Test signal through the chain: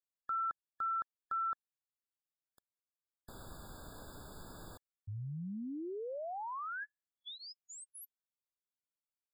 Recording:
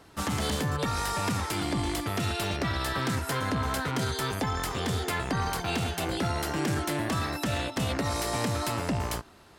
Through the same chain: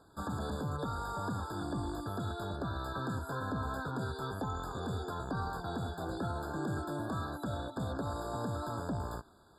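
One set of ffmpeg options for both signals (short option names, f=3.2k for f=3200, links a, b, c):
-filter_complex "[0:a]acrossover=split=2900[a][b];[b]acompressor=threshold=-43dB:ratio=4:attack=1:release=60[c];[a][c]amix=inputs=2:normalize=0,bandreject=f=4.1k:w=8.1,afftfilt=real='re*eq(mod(floor(b*sr/1024/1700),2),0)':imag='im*eq(mod(floor(b*sr/1024/1700),2),0)':win_size=1024:overlap=0.75,volume=-7dB"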